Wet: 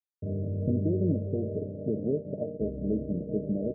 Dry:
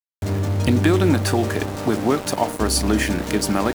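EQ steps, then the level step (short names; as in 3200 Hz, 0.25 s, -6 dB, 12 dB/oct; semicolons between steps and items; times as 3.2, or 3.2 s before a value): HPF 81 Hz; rippled Chebyshev low-pass 640 Hz, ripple 9 dB; -3.5 dB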